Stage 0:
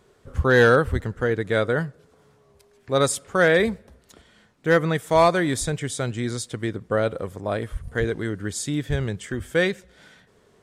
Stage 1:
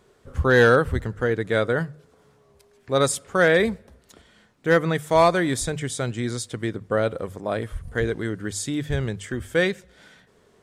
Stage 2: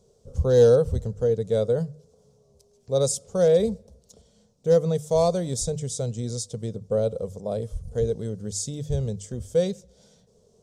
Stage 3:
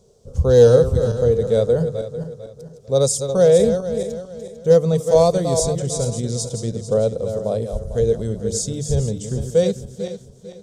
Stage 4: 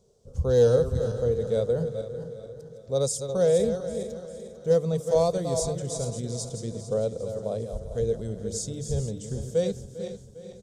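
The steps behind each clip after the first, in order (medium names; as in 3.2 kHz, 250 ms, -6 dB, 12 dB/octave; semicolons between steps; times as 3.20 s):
hum notches 50/100/150 Hz
FFT filter 210 Hz 0 dB, 320 Hz -15 dB, 470 Hz +3 dB, 1.8 kHz -26 dB, 5.9 kHz +4 dB, 12 kHz -7 dB
backward echo that repeats 224 ms, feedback 55%, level -8 dB; trim +5.5 dB
feedback delay 401 ms, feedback 56%, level -16 dB; trim -8.5 dB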